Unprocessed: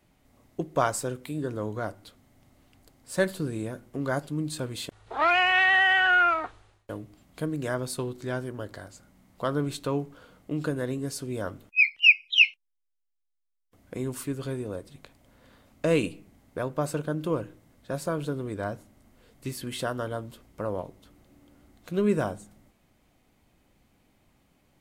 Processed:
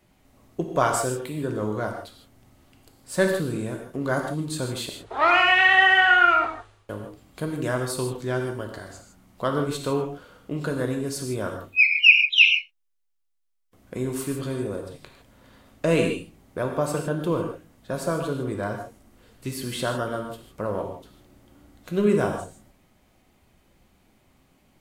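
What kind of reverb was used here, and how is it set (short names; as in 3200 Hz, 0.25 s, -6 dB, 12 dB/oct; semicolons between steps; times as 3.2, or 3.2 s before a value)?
non-linear reverb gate 0.18 s flat, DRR 2.5 dB; gain +2.5 dB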